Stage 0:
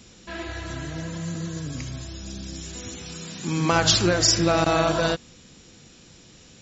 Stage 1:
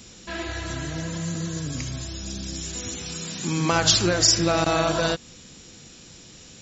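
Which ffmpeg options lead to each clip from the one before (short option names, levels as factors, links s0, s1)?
-filter_complex "[0:a]highshelf=f=4800:g=6,asplit=2[s0][s1];[s1]acompressor=threshold=0.0447:ratio=6,volume=0.891[s2];[s0][s2]amix=inputs=2:normalize=0,volume=0.668"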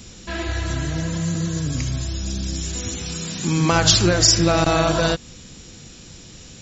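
-af "lowshelf=f=120:g=9,volume=1.41"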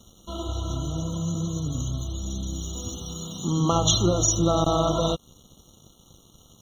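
-af "aeval=exprs='sgn(val(0))*max(abs(val(0))-0.0075,0)':c=same,afftfilt=real='re*eq(mod(floor(b*sr/1024/1400),2),0)':imag='im*eq(mod(floor(b*sr/1024/1400),2),0)':win_size=1024:overlap=0.75,volume=0.668"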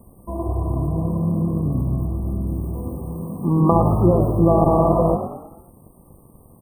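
-filter_complex "[0:a]afftfilt=real='re*(1-between(b*sr/4096,1200,7900))':imag='im*(1-between(b*sr/4096,1200,7900))':win_size=4096:overlap=0.75,asplit=6[s0][s1][s2][s3][s4][s5];[s1]adelay=108,afreqshift=41,volume=0.355[s6];[s2]adelay=216,afreqshift=82,volume=0.164[s7];[s3]adelay=324,afreqshift=123,volume=0.075[s8];[s4]adelay=432,afreqshift=164,volume=0.0347[s9];[s5]adelay=540,afreqshift=205,volume=0.0158[s10];[s0][s6][s7][s8][s9][s10]amix=inputs=6:normalize=0,volume=2.11"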